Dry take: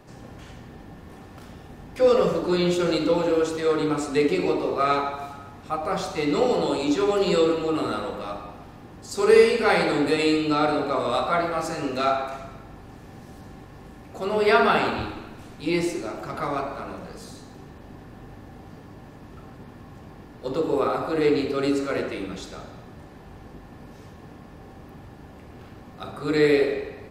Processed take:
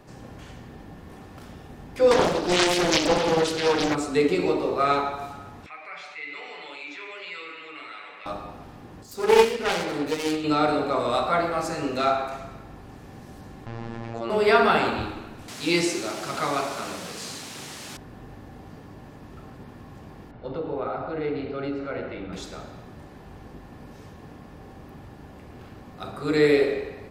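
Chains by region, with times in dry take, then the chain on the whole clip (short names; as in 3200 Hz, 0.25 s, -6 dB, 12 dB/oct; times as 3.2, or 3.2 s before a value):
2.11–3.95 bell 3900 Hz +10.5 dB 1.6 oct + Doppler distortion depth 0.89 ms
5.66–8.26 band-pass 2200 Hz, Q 5.9 + comb 6.9 ms, depth 56% + fast leveller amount 50%
9.03–10.44 self-modulated delay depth 0.38 ms + upward expander, over -24 dBFS
13.66–14.3 robotiser 115 Hz + air absorption 120 m + fast leveller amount 70%
15.48–17.97 high shelf 2700 Hz +12 dB + requantised 6-bit, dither triangular + BPF 110–7300 Hz
20.31–22.33 air absorption 320 m + comb 1.4 ms, depth 32% + compressor 1.5:1, threshold -33 dBFS
whole clip: dry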